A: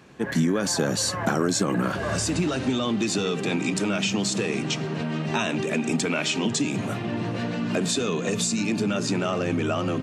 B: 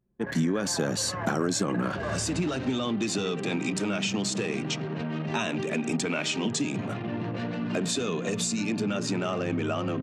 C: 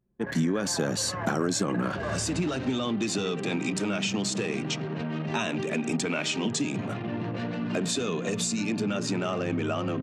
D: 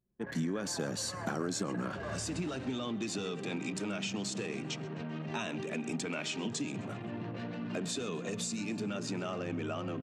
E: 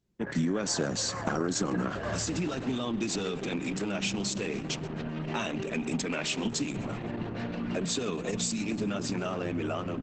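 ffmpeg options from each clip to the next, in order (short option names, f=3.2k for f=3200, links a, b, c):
-af "anlmdn=6.31,volume=-3.5dB"
-af anull
-filter_complex "[0:a]asplit=5[a][b][c][d][e];[b]adelay=130,afreqshift=37,volume=-22dB[f];[c]adelay=260,afreqshift=74,volume=-27.8dB[g];[d]adelay=390,afreqshift=111,volume=-33.7dB[h];[e]adelay=520,afreqshift=148,volume=-39.5dB[i];[a][f][g][h][i]amix=inputs=5:normalize=0,volume=-8dB"
-af "volume=6dB" -ar 48000 -c:a libopus -b:a 10k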